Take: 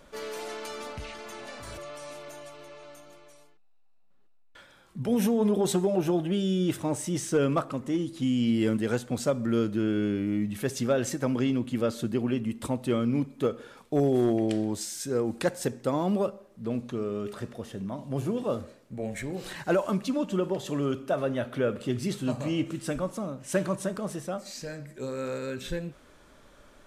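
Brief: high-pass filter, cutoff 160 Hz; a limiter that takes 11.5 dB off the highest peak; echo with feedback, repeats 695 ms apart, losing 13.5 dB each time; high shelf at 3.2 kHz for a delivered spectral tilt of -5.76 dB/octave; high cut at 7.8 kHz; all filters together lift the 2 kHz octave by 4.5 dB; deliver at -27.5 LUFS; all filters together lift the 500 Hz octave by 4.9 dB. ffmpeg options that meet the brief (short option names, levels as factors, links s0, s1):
-af "highpass=160,lowpass=7800,equalizer=f=500:t=o:g=6,equalizer=f=2000:t=o:g=8.5,highshelf=f=3200:g=-8.5,alimiter=limit=0.1:level=0:latency=1,aecho=1:1:695|1390:0.211|0.0444,volume=1.41"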